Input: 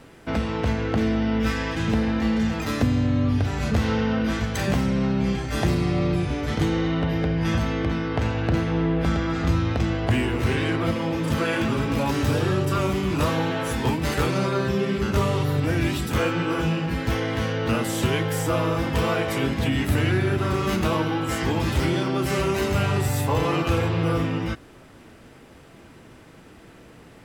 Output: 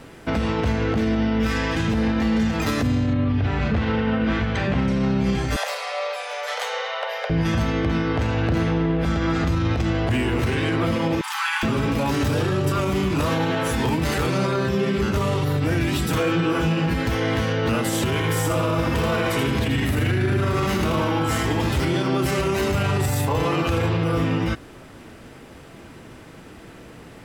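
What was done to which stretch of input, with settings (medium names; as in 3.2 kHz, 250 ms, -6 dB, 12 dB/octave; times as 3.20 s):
3.13–4.88 s: Chebyshev low-pass 2.8 kHz
5.56–7.30 s: steep high-pass 490 Hz 96 dB/octave
11.21–11.63 s: brick-wall FIR high-pass 740 Hz
16.08–16.53 s: comb 6.3 ms
18.04–21.71 s: feedback delay 81 ms, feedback 39%, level -4.5 dB
whole clip: peak limiter -18.5 dBFS; trim +5 dB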